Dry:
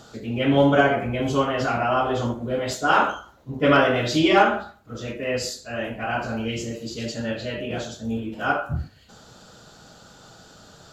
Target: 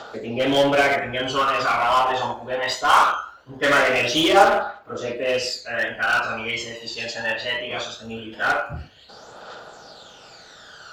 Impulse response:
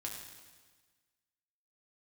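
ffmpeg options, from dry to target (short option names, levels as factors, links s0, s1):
-filter_complex "[0:a]acrossover=split=450 5100:gain=0.0891 1 0.178[s0][s1][s2];[s0][s1][s2]amix=inputs=3:normalize=0,aphaser=in_gain=1:out_gain=1:delay=1.2:decay=0.61:speed=0.21:type=triangular,asplit=2[s3][s4];[s4]aeval=exprs='0.0631*(abs(mod(val(0)/0.0631+3,4)-2)-1)':c=same,volume=0.562[s5];[s3][s5]amix=inputs=2:normalize=0,volume=1.41"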